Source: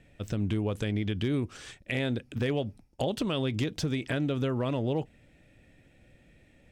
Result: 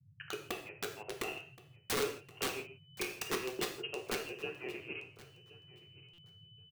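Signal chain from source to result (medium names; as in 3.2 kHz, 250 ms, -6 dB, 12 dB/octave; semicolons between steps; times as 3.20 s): spectral noise reduction 21 dB; hum notches 60/120/180/240/300/360/420 Hz; transient shaper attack +11 dB, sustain -9 dB; hysteresis with a dead band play -30 dBFS; frequency inversion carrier 3 kHz; auto-wah 380–1900 Hz, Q 7.2, down, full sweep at -33.5 dBFS; integer overflow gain 43.5 dB; feedback delay 1073 ms, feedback 15%, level -20 dB; gated-style reverb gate 190 ms falling, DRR 3 dB; band noise 92–160 Hz -76 dBFS; buffer glitch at 6.13 s, samples 256, times 8; trim +14.5 dB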